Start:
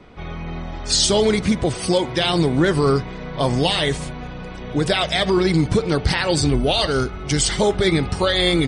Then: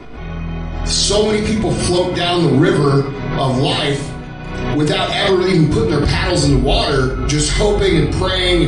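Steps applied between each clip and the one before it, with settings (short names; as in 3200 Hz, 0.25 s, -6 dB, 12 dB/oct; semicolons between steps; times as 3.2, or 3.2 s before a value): shoebox room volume 910 m³, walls furnished, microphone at 3.2 m; backwards sustainer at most 38 dB/s; gain -1.5 dB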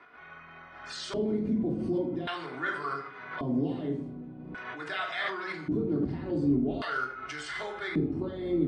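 LFO band-pass square 0.44 Hz 260–1500 Hz; gain -7.5 dB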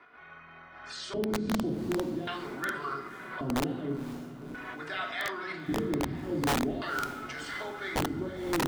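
wrapped overs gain 21 dB; diffused feedback echo 0.529 s, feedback 52%, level -14 dB; gain -1.5 dB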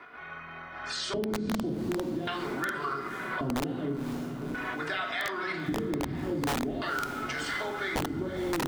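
compressor 4:1, threshold -37 dBFS, peak gain reduction 10 dB; gain +7.5 dB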